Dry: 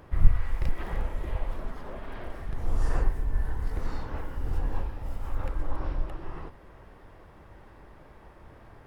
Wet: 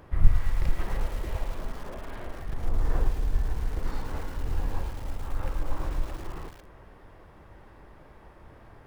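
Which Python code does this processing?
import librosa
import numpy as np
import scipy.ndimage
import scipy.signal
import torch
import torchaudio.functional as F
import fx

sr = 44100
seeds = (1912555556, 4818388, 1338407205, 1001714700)

y = fx.high_shelf(x, sr, hz=2400.0, db=-11.5, at=(2.69, 3.86))
y = fx.echo_crushed(y, sr, ms=110, feedback_pct=80, bits=6, wet_db=-13.0)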